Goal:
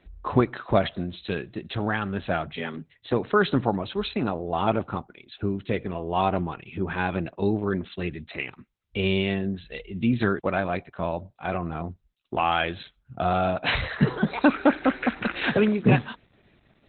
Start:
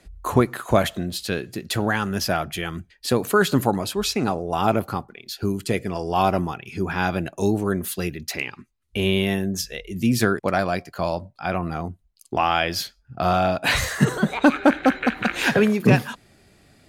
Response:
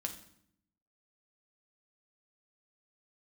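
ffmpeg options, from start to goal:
-filter_complex "[0:a]asplit=3[a][b][c];[a]afade=t=out:st=2.55:d=0.02[d];[b]afreqshift=70,afade=t=in:st=2.55:d=0.02,afade=t=out:st=3.11:d=0.02[e];[c]afade=t=in:st=3.11:d=0.02[f];[d][e][f]amix=inputs=3:normalize=0,volume=-2.5dB" -ar 48000 -c:a libopus -b:a 8k

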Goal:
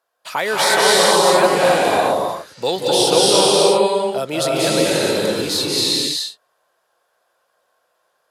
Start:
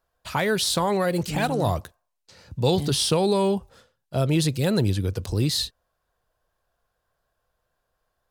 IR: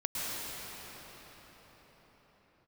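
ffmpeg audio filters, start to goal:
-filter_complex "[0:a]highpass=430[a];[1:a]atrim=start_sample=2205,afade=t=out:st=0.44:d=0.01,atrim=end_sample=19845,asetrate=25578,aresample=44100[b];[a][b]afir=irnorm=-1:irlink=0,volume=3dB"

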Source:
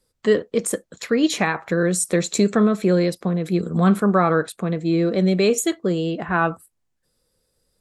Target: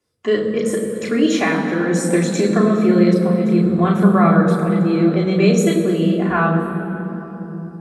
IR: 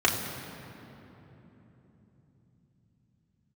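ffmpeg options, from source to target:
-filter_complex "[1:a]atrim=start_sample=2205,asetrate=40572,aresample=44100[a];[0:a][a]afir=irnorm=-1:irlink=0,volume=-12.5dB"

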